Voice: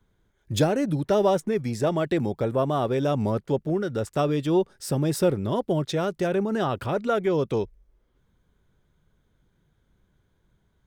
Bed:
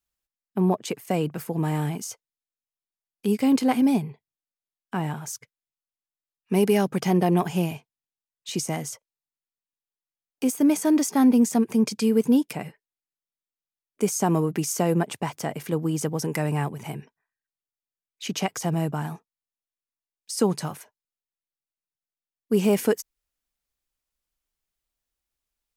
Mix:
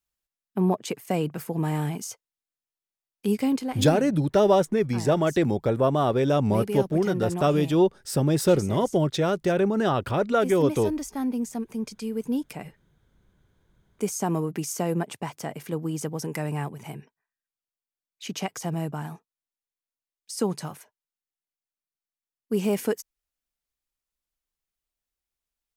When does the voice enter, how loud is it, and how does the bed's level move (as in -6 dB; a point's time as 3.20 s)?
3.25 s, +2.0 dB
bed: 3.39 s -1 dB
3.71 s -10 dB
12.13 s -10 dB
12.68 s -4 dB